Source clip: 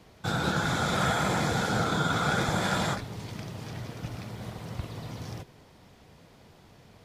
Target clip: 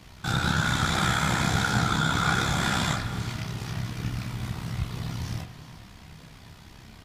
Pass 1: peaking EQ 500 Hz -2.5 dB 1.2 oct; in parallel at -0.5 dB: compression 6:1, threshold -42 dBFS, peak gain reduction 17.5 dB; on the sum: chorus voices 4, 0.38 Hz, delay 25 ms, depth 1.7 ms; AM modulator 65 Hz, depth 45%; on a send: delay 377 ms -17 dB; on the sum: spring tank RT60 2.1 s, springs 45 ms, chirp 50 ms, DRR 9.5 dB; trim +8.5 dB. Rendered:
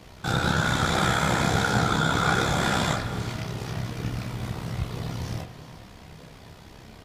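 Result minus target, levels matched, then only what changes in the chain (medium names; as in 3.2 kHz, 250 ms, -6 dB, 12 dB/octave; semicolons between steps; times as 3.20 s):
500 Hz band +5.5 dB
change: peaking EQ 500 Hz -11.5 dB 1.2 oct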